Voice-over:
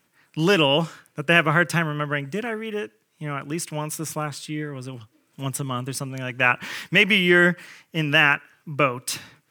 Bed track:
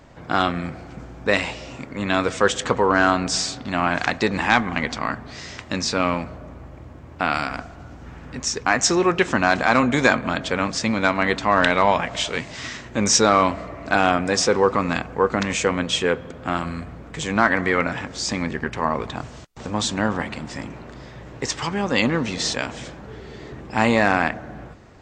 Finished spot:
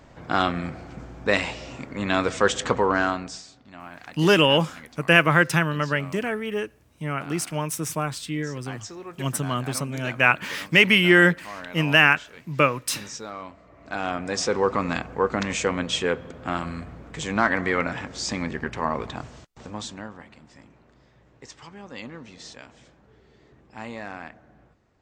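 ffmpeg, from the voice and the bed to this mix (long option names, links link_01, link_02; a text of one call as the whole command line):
ffmpeg -i stem1.wav -i stem2.wav -filter_complex "[0:a]adelay=3800,volume=1dB[link_01];[1:a]volume=15dB,afade=type=out:start_time=2.78:duration=0.64:silence=0.11885,afade=type=in:start_time=13.63:duration=1.13:silence=0.141254,afade=type=out:start_time=19.11:duration=1.01:silence=0.177828[link_02];[link_01][link_02]amix=inputs=2:normalize=0" out.wav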